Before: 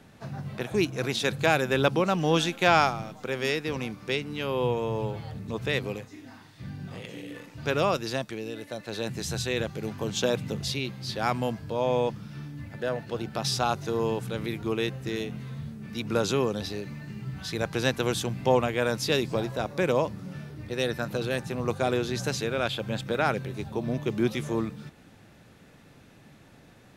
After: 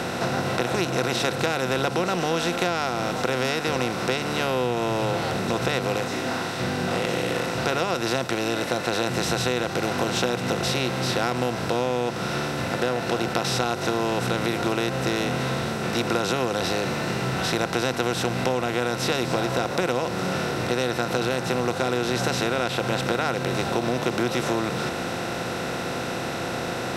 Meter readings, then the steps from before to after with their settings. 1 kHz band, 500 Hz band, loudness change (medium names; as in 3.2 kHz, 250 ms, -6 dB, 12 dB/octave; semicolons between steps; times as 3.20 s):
+5.0 dB, +3.5 dB, +3.5 dB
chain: spectral levelling over time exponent 0.4; rippled EQ curve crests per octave 2, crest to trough 6 dB; compression, threshold -20 dBFS, peak gain reduction 10 dB